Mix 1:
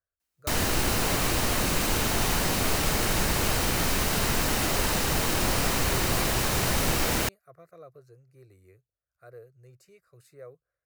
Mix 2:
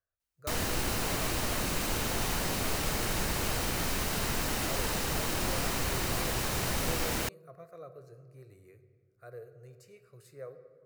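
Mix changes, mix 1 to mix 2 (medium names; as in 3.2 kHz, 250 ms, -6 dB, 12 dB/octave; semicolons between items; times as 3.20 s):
background -6.0 dB; reverb: on, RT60 1.7 s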